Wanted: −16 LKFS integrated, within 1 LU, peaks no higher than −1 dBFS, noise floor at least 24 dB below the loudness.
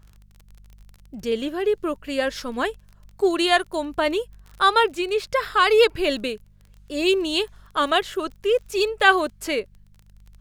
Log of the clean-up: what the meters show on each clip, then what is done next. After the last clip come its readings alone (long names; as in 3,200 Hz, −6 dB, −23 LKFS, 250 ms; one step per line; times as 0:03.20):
crackle rate 25 per second; mains hum 50 Hz; hum harmonics up to 200 Hz; level of the hum −49 dBFS; integrated loudness −22.0 LKFS; sample peak −2.0 dBFS; target loudness −16.0 LKFS
→ click removal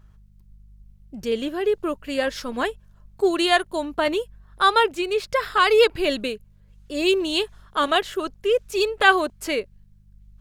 crackle rate 0.87 per second; mains hum 50 Hz; hum harmonics up to 150 Hz; level of the hum −49 dBFS
→ hum removal 50 Hz, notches 3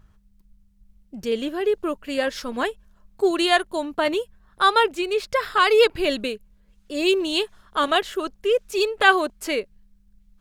mains hum none found; integrated loudness −22.0 LKFS; sample peak −2.0 dBFS; target loudness −16.0 LKFS
→ level +6 dB
brickwall limiter −1 dBFS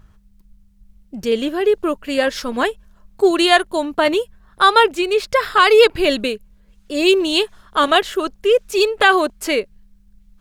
integrated loudness −16.5 LKFS; sample peak −1.0 dBFS; background noise floor −53 dBFS